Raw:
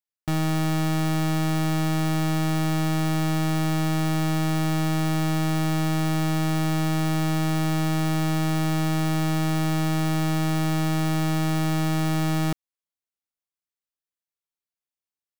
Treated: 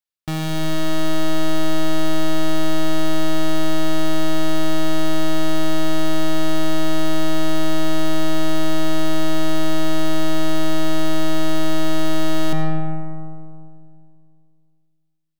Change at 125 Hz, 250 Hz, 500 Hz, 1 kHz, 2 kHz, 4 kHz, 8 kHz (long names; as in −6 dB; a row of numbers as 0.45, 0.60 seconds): −6.5, +2.5, +8.0, +1.5, +2.5, +6.0, +1.5 decibels